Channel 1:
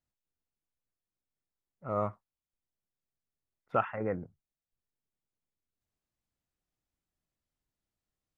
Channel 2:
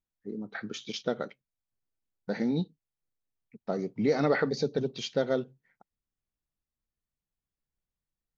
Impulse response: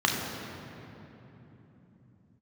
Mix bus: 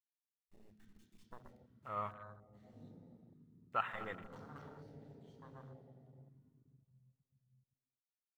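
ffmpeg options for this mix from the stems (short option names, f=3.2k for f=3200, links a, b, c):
-filter_complex "[0:a]tiltshelf=f=970:g=-4.5,aeval=exprs='val(0)*gte(abs(val(0)),0.00282)':c=same,volume=-1.5dB,asplit=4[a][b][c][d];[b]volume=-23dB[e];[c]volume=-14dB[f];[1:a]acrusher=bits=4:dc=4:mix=0:aa=0.000001,adelay=250,volume=-15dB,asplit=2[g][h];[h]volume=-14dB[i];[d]apad=whole_len=380172[j];[g][j]sidechaingate=range=-33dB:threshold=-47dB:ratio=16:detection=peak[k];[2:a]atrim=start_sample=2205[l];[e][i]amix=inputs=2:normalize=0[m];[m][l]afir=irnorm=-1:irlink=0[n];[f]aecho=0:1:238:1[o];[a][k][n][o]amix=inputs=4:normalize=0,afwtdn=0.00562,equalizer=f=310:w=0.32:g=-13.5"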